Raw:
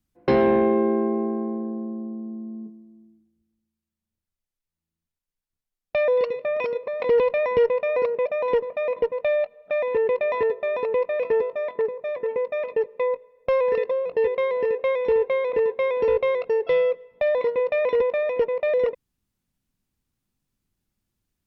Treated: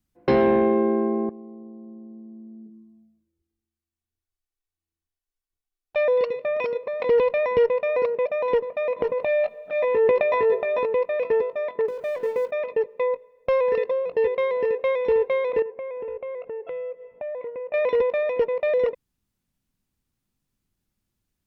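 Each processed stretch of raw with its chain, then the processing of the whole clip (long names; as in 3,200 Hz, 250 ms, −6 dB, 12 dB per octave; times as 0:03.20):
0:01.29–0:05.96: downward compressor 3 to 1, threshold −42 dBFS + flanger swept by the level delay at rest 2.7 ms, full sweep at −38 dBFS
0:08.99–0:10.86: double-tracking delay 18 ms −5 dB + transient designer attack −6 dB, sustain +8 dB
0:11.88–0:12.51: mu-law and A-law mismatch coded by mu + mains-hum notches 50/100/150/200/250/300/350/400 Hz + upward compression, threshold −30 dBFS
0:15.62–0:17.74: parametric band 600 Hz +6 dB 1 octave + downward compressor 3 to 1, threshold −36 dBFS + Butterworth low-pass 2,900 Hz
whole clip: no processing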